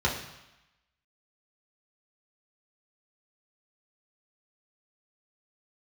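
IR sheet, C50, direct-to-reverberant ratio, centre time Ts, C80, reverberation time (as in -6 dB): 6.5 dB, -4.0 dB, 33 ms, 9.0 dB, 0.95 s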